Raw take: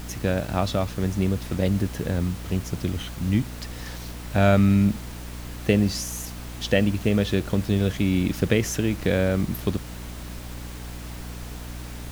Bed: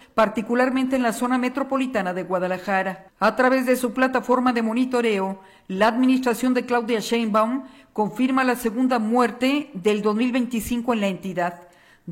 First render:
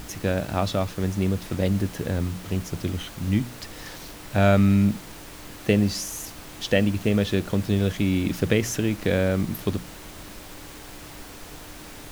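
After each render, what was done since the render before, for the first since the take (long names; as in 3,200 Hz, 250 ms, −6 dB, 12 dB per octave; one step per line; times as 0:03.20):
mains-hum notches 60/120/180/240 Hz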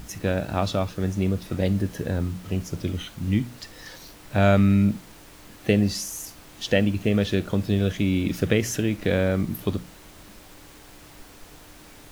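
noise reduction from a noise print 6 dB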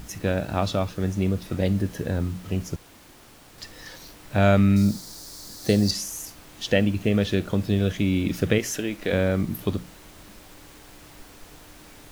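0:02.76–0:03.58: fill with room tone
0:04.76–0:05.91: high shelf with overshoot 3,600 Hz +9 dB, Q 3
0:08.58–0:09.13: parametric band 100 Hz −13 dB 2 octaves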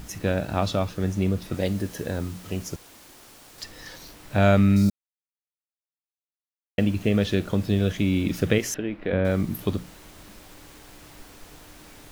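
0:01.54–0:03.64: bass and treble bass −5 dB, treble +4 dB
0:04.90–0:06.78: silence
0:08.74–0:09.25: high-frequency loss of the air 430 metres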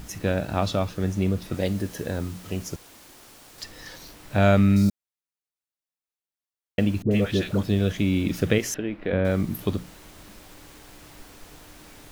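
0:07.02–0:07.63: all-pass dispersion highs, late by 91 ms, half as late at 850 Hz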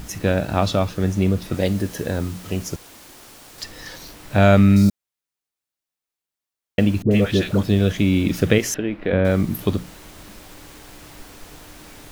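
level +5 dB
brickwall limiter −1 dBFS, peak gain reduction 1 dB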